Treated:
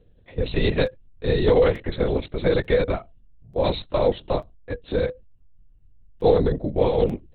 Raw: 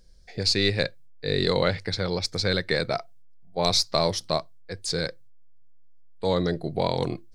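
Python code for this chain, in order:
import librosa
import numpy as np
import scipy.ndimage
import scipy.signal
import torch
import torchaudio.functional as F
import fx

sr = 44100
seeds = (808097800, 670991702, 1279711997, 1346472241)

y = fx.small_body(x, sr, hz=(220.0, 480.0, 2800.0), ring_ms=45, db=14)
y = fx.lpc_vocoder(y, sr, seeds[0], excitation='whisper', order=10)
y = fx.buffer_crackle(y, sr, first_s=0.86, period_s=0.89, block=256, kind='repeat')
y = y * 10.0 ** (-2.5 / 20.0)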